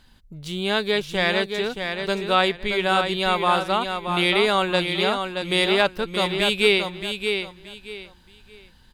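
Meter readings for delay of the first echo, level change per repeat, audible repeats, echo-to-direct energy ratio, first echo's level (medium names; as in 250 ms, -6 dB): 625 ms, -12.0 dB, 3, -6.0 dB, -6.5 dB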